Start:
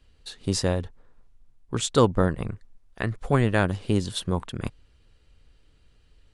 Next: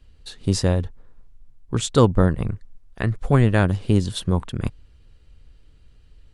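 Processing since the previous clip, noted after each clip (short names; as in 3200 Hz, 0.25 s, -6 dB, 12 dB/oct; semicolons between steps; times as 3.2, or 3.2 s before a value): low shelf 220 Hz +7.5 dB; gain +1 dB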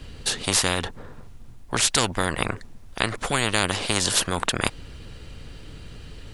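spectral compressor 4:1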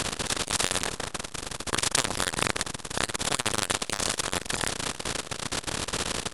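per-bin compression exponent 0.2; core saturation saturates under 2300 Hz; gain -5.5 dB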